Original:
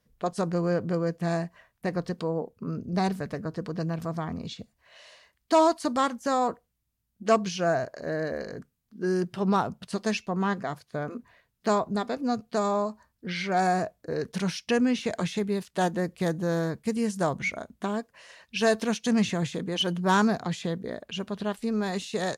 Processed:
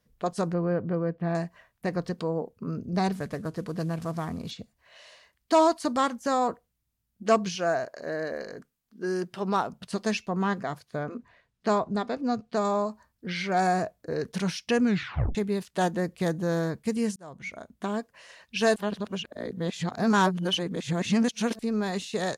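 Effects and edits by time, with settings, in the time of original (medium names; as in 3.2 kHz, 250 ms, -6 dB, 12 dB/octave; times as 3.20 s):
0.53–1.35 s: distance through air 410 m
3.15–4.51 s: CVSD coder 64 kbps
7.55–9.73 s: peaking EQ 80 Hz -11.5 dB 2.6 oct
11.02–12.65 s: distance through air 56 m
14.83 s: tape stop 0.52 s
17.16–17.96 s: fade in
18.76–21.59 s: reverse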